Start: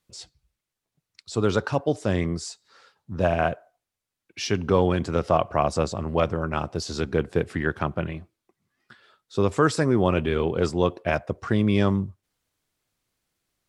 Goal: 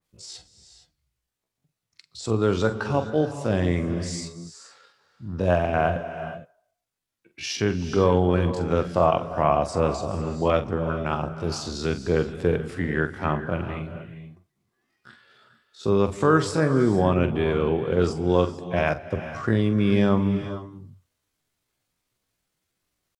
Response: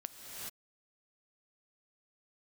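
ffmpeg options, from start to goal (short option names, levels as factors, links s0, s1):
-filter_complex "[0:a]atempo=0.59,asplit=2[s0][s1];[1:a]atrim=start_sample=2205,adelay=45[s2];[s1][s2]afir=irnorm=-1:irlink=0,volume=0.447[s3];[s0][s3]amix=inputs=2:normalize=0,adynamicequalizer=threshold=0.0178:dfrequency=2000:dqfactor=0.7:tfrequency=2000:tqfactor=0.7:attack=5:release=100:ratio=0.375:range=2:mode=cutabove:tftype=highshelf"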